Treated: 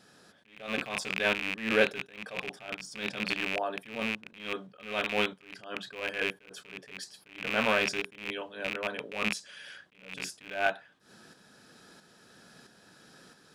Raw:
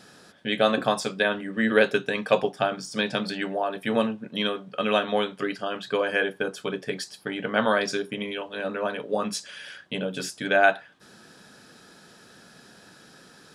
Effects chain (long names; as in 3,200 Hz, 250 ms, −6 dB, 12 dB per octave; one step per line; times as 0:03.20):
loose part that buzzes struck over −38 dBFS, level −11 dBFS
shaped tremolo saw up 1.5 Hz, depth 50%
level that may rise only so fast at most 120 dB per second
level −3 dB